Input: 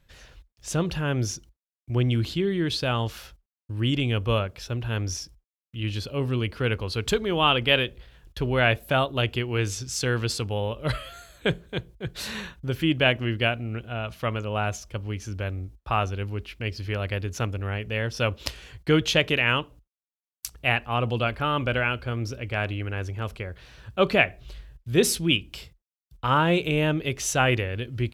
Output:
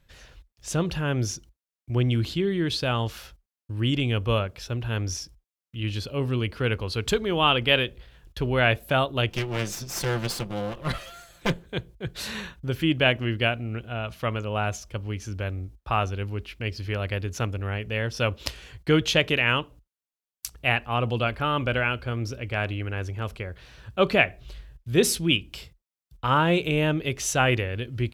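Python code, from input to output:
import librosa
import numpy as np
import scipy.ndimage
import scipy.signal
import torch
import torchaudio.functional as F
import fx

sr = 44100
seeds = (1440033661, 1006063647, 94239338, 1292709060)

y = fx.lower_of_two(x, sr, delay_ms=5.8, at=(9.3, 11.65))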